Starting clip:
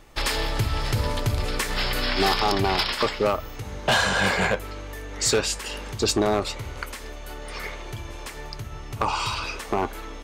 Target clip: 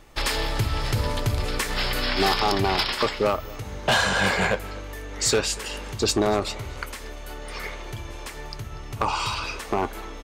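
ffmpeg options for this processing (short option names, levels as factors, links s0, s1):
-af "aecho=1:1:241:0.0841"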